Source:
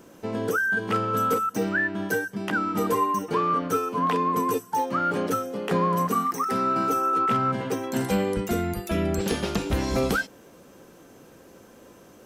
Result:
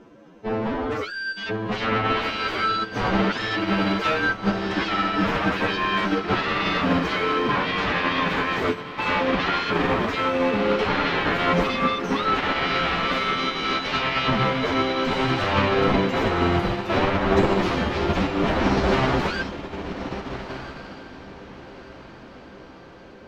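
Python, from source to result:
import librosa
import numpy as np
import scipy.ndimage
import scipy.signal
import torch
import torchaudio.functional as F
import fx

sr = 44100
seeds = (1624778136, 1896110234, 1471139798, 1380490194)

y = fx.fold_sine(x, sr, drive_db=13, ceiling_db=-13.5)
y = fx.stretch_vocoder(y, sr, factor=1.9)
y = 10.0 ** (-7.5 / 20.0) * np.tanh(y / 10.0 ** (-7.5 / 20.0))
y = fx.air_absorb(y, sr, metres=220.0)
y = fx.echo_diffused(y, sr, ms=1435, feedback_pct=51, wet_db=-4)
y = fx.upward_expand(y, sr, threshold_db=-24.0, expansion=2.5)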